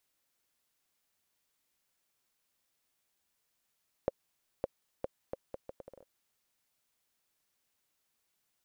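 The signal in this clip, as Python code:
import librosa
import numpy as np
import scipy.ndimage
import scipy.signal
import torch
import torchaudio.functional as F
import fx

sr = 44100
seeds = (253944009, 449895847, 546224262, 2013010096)

y = fx.bouncing_ball(sr, first_gap_s=0.56, ratio=0.72, hz=537.0, decay_ms=26.0, level_db=-16.5)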